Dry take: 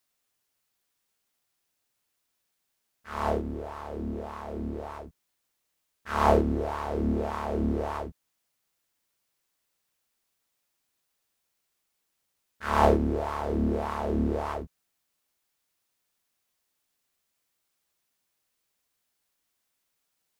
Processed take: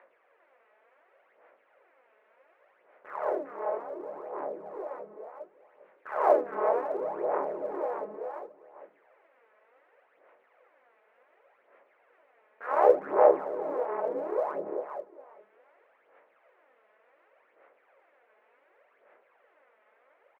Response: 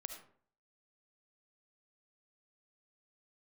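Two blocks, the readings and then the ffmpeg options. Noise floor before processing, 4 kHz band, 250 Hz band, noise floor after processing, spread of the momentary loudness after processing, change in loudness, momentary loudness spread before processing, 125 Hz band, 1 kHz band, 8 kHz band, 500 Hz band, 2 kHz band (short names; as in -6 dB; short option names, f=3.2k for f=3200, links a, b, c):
-79 dBFS, under -15 dB, -12.0 dB, -67 dBFS, 20 LU, -0.5 dB, 16 LU, under -25 dB, -0.5 dB, under -15 dB, +3.5 dB, -4.0 dB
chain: -filter_complex "[0:a]equalizer=f=590:w=2.2:g=11,acompressor=mode=upward:threshold=-32dB:ratio=2.5,flanger=delay=16.5:depth=6.7:speed=1.4,highpass=f=450:t=q:w=0.5412,highpass=f=450:t=q:w=1.307,lowpass=f=2.2k:t=q:w=0.5176,lowpass=f=2.2k:t=q:w=0.7071,lowpass=f=2.2k:t=q:w=1.932,afreqshift=-53,aecho=1:1:402|804|1206:0.562|0.112|0.0225,asplit=2[a][b];[1:a]atrim=start_sample=2205[c];[b][c]afir=irnorm=-1:irlink=0,volume=-11dB[d];[a][d]amix=inputs=2:normalize=0,aphaser=in_gain=1:out_gain=1:delay=4.7:decay=0.56:speed=0.68:type=sinusoidal,volume=-5dB"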